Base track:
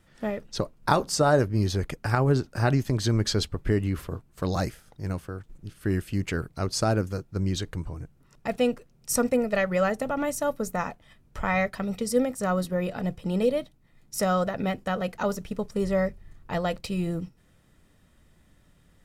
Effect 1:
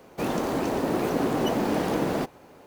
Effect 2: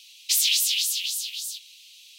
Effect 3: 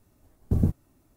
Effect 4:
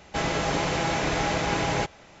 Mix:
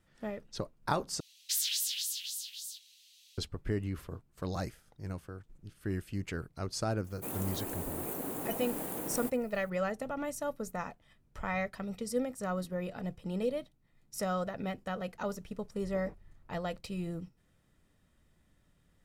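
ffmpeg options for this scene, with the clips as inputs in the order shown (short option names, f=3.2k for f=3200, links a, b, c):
-filter_complex "[0:a]volume=-9dB[a];[2:a]highshelf=f=1.9k:t=q:w=3:g=-7.5[b];[1:a]aexciter=amount=10.6:drive=4.6:freq=7.7k[c];[3:a]asuperpass=centerf=1100:order=4:qfactor=0.55[d];[a]asplit=2[e][f];[e]atrim=end=1.204[g];[b]atrim=end=2.18,asetpts=PTS-STARTPTS,volume=-2dB[h];[f]atrim=start=3.376[i];[c]atrim=end=2.66,asetpts=PTS-STARTPTS,volume=-15dB,afade=t=in:d=0.004:c=hsin,afade=t=out:st=2.656:d=0.004:c=hsin,adelay=7040[j];[d]atrim=end=1.16,asetpts=PTS-STARTPTS,volume=-9dB,afade=t=in:d=0.004:c=hsin,afade=t=out:st=1.156:d=0.004:c=hsin,adelay=15430[k];[g][h]acrossfade=d=0.004:c1=hsin:c2=hsin[l];[l][i]acrossfade=d=0.004:c1=hsin:c2=hsin[m];[m][j][k]amix=inputs=3:normalize=0"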